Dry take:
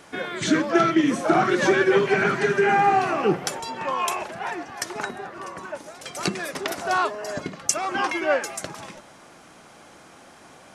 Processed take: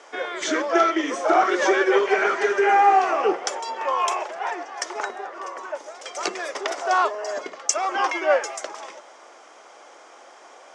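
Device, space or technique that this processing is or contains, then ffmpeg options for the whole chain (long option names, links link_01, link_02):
phone speaker on a table: -af "highpass=frequency=410:width=0.5412,highpass=frequency=410:width=1.3066,equalizer=frequency=1600:width_type=q:width=4:gain=-4,equalizer=frequency=2600:width_type=q:width=4:gain=-5,equalizer=frequency=4100:width_type=q:width=4:gain=-8,lowpass=frequency=7000:width=0.5412,lowpass=frequency=7000:width=1.3066,volume=3.5dB"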